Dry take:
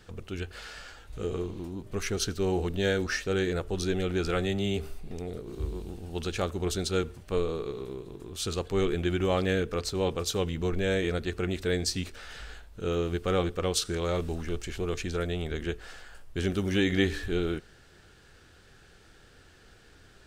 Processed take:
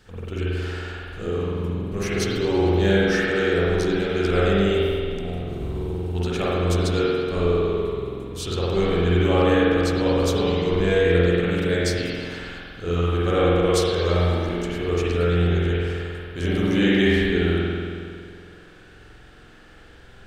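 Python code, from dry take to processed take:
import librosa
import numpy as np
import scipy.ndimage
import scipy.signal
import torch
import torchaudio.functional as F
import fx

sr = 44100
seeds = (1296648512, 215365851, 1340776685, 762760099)

y = fx.rev_spring(x, sr, rt60_s=2.2, pass_ms=(46,), chirp_ms=70, drr_db=-8.0)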